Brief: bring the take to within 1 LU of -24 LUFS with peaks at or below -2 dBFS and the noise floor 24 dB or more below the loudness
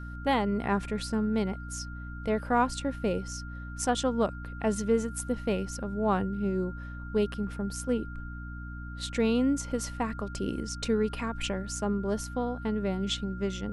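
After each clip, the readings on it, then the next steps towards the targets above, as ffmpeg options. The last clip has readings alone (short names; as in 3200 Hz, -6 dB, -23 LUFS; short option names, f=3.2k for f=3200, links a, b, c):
hum 60 Hz; harmonics up to 300 Hz; hum level -38 dBFS; steady tone 1400 Hz; tone level -45 dBFS; loudness -30.5 LUFS; peak -13.5 dBFS; loudness target -24.0 LUFS
-> -af "bandreject=f=60:t=h:w=4,bandreject=f=120:t=h:w=4,bandreject=f=180:t=h:w=4,bandreject=f=240:t=h:w=4,bandreject=f=300:t=h:w=4"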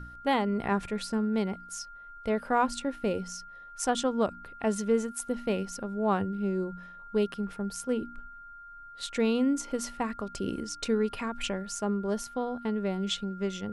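hum none; steady tone 1400 Hz; tone level -45 dBFS
-> -af "bandreject=f=1.4k:w=30"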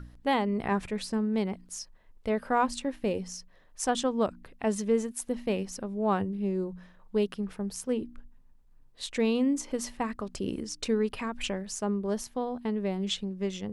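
steady tone none; loudness -31.0 LUFS; peak -13.5 dBFS; loudness target -24.0 LUFS
-> -af "volume=7dB"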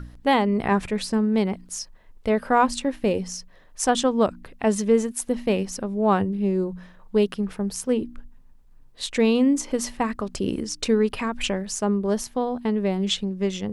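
loudness -24.0 LUFS; peak -6.5 dBFS; noise floor -50 dBFS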